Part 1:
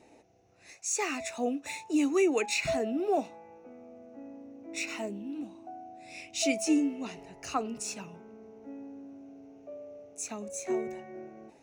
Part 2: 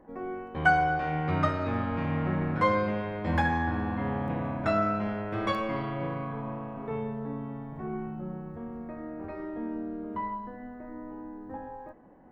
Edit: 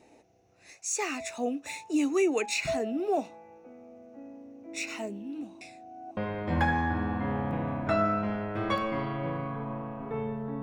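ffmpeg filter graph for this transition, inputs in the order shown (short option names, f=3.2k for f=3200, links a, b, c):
-filter_complex "[0:a]apad=whole_dur=10.62,atrim=end=10.62,asplit=2[a][b];[a]atrim=end=5.612[c];[b]atrim=start=5.608:end=6.172,asetpts=PTS-STARTPTS,areverse[d];[1:a]atrim=start=2.938:end=7.39[e];[c][d]acrossfade=d=0.004:c1=hsin:c2=hsin[f];[f][e]acrossfade=d=0.004:c1=hsin:c2=hsin"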